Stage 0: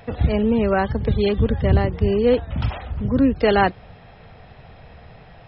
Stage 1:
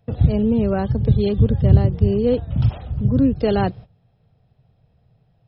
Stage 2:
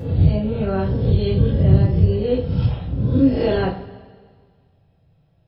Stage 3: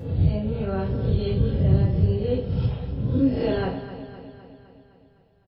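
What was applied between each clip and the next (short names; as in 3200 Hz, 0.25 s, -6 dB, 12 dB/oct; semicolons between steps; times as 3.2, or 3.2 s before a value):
gate -35 dBFS, range -18 dB; graphic EQ 125/1000/2000 Hz +11/-5/-10 dB; gain -1.5 dB
spectral swells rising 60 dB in 0.71 s; two-slope reverb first 0.35 s, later 1.8 s, from -19 dB, DRR -5.5 dB; gain -8 dB
feedback echo 0.256 s, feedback 59%, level -12.5 dB; gain -5.5 dB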